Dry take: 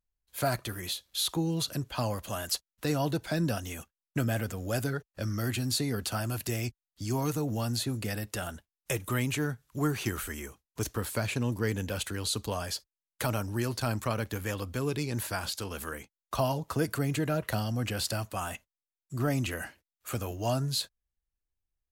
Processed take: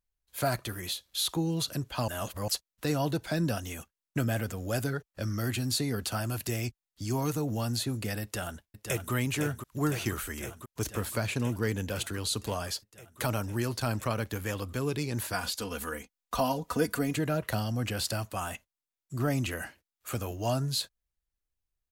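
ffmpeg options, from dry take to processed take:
-filter_complex "[0:a]asplit=2[a][b];[b]afade=t=in:st=8.23:d=0.01,afade=t=out:st=9.12:d=0.01,aecho=0:1:510|1020|1530|2040|2550|3060|3570|4080|4590|5100|5610|6120:0.446684|0.357347|0.285877|0.228702|0.182962|0.146369|0.117095|0.0936763|0.0749411|0.0599529|0.0479623|0.0383698[c];[a][c]amix=inputs=2:normalize=0,asettb=1/sr,asplit=3[d][e][f];[d]atrim=end=15.334[g];[e]atrim=start=15.33:end=17.15,asetpts=PTS-STARTPTS,afade=t=in:d=0.004:c=qsin,afade=t=out:st=1.816:d=0.004:c=qsin,aecho=1:1:4.1:0.65,atrim=end_sample=80262[h];[f]atrim=start=17.146[i];[g][h]acrossfade=d=0.004:c1=hsin:c2=qsin[j];[j][i]acrossfade=d=0.004:c1=qsin:c2=hsin,asplit=3[k][l][m];[k]atrim=end=2.082[n];[l]atrim=start=2.078:end=2.482,asetpts=PTS-STARTPTS,areverse[o];[m]atrim=start=2.478[p];[n][o]acrossfade=d=0.004:c1=hsin:c2=hsin[q];[q][p]acrossfade=d=0.004:c1=hsin:c2=hsin"

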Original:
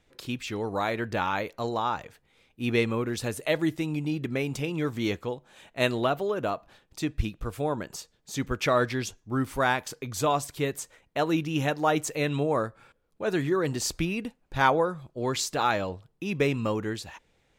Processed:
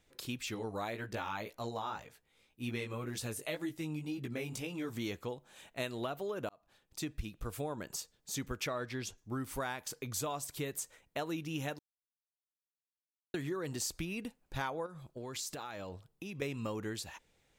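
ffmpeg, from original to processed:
-filter_complex "[0:a]asplit=3[a][b][c];[a]afade=t=out:st=0.54:d=0.02[d];[b]flanger=delay=15.5:depth=4.3:speed=1.9,afade=t=in:st=0.54:d=0.02,afade=t=out:st=4.89:d=0.02[e];[c]afade=t=in:st=4.89:d=0.02[f];[d][e][f]amix=inputs=3:normalize=0,asettb=1/sr,asplit=3[g][h][i];[g]atrim=end=8.674[j];[h]atrim=start=8.67:end=9.18,asetpts=PTS-STARTPTS,afade=t=in:d=0.004:c=qsin,afade=t=out:st=0.506:d=0.004:c=qsin,highshelf=f=6.8k:g=-9[k];[i]atrim=start=9.176[l];[j][k]acrossfade=d=0.004:c1=hsin:c2=qsin[m];[m][l]acrossfade=d=0.004:c1=qsin:c2=hsin,asettb=1/sr,asplit=3[n][o][p];[n]atrim=end=14.864[q];[o]atrim=start=14.86:end=16.42,asetpts=PTS-STARTPTS,afade=t=in:d=0.004:c=qsin,afade=t=out:st=1.556:d=0.004:c=qsin,acompressor=threshold=-34dB:ratio=12:attack=3.2:release=140:knee=1:detection=peak[r];[p]atrim=start=16.416[s];[q][r]acrossfade=d=0.004:c1=hsin:c2=qsin[t];[t][s]acrossfade=d=0.004:c1=qsin:c2=hsin,asplit=4[u][v][w][x];[u]atrim=end=6.49,asetpts=PTS-STARTPTS,afade=t=out:st=6.486:d=0.004:c=hsin[y];[v]atrim=start=6.49:end=11.79,asetpts=PTS-STARTPTS,afade=t=in:d=0.62,afade=t=out:st=5.296:d=0.004:c=hsin[z];[w]atrim=start=11.79:end=13.34,asetpts=PTS-STARTPTS,volume=0[aa];[x]atrim=start=13.34,asetpts=PTS-STARTPTS,afade=t=in:d=0.004:c=hsin[ab];[y][z][aa][ab]concat=n=4:v=0:a=1,highshelf=f=5.9k:g=9.5,acompressor=threshold=-29dB:ratio=6,volume=-5.5dB"

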